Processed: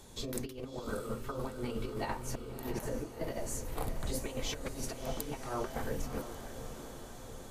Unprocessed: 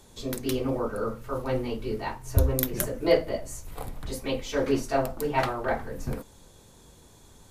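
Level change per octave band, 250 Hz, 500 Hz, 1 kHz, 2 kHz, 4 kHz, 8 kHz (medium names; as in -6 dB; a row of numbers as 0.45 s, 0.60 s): -9.0 dB, -11.5 dB, -9.5 dB, -10.0 dB, -6.0 dB, -4.0 dB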